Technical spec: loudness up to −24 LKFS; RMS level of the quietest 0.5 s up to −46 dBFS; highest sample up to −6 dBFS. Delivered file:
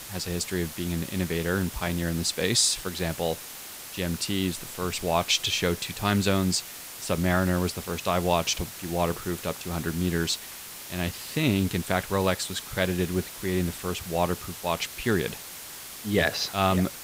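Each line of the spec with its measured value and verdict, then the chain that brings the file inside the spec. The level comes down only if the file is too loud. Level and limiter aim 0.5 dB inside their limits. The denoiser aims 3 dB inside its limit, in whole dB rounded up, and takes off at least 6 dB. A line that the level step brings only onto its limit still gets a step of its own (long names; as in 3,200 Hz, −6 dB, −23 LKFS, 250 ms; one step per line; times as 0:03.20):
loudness −27.0 LKFS: in spec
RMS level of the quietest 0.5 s −41 dBFS: out of spec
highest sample −8.0 dBFS: in spec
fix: broadband denoise 8 dB, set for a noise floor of −41 dBFS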